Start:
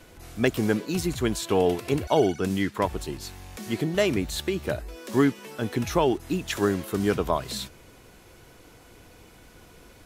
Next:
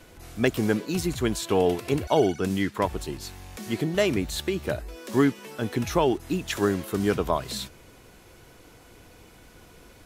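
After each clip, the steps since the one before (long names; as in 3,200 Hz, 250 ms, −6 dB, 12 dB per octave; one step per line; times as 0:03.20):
no processing that can be heard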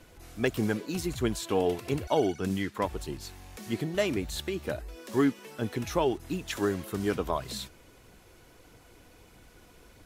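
phase shifter 1.6 Hz, delay 4.2 ms, feedback 27%
level −5 dB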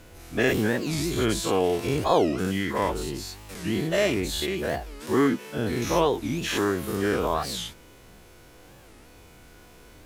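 every bin's largest magnitude spread in time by 120 ms
bit reduction 11 bits
wow of a warped record 45 rpm, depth 250 cents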